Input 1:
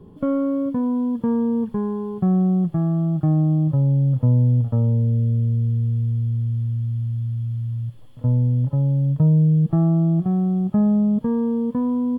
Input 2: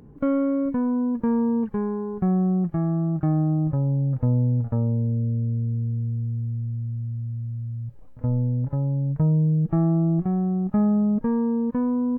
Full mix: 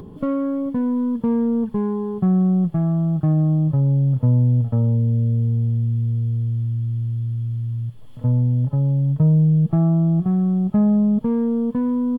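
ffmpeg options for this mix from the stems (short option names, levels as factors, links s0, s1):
-filter_complex "[0:a]acompressor=mode=upward:threshold=0.0282:ratio=2.5,volume=1[s0];[1:a]acompressor=threshold=0.0708:ratio=6,aeval=exprs='(tanh(20*val(0)+0.25)-tanh(0.25))/20':c=same,adelay=5.4,volume=0.596[s1];[s0][s1]amix=inputs=2:normalize=0"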